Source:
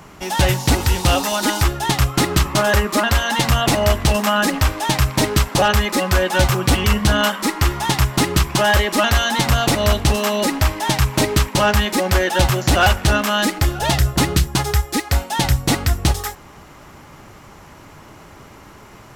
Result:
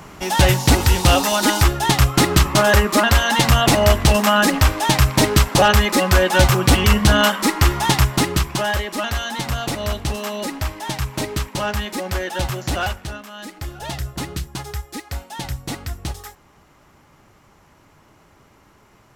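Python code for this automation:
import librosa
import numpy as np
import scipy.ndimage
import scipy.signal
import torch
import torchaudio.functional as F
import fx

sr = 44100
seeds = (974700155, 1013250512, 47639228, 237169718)

y = fx.gain(x, sr, db=fx.line((7.93, 2.0), (8.84, -7.5), (12.78, -7.5), (13.29, -19.5), (13.75, -11.0)))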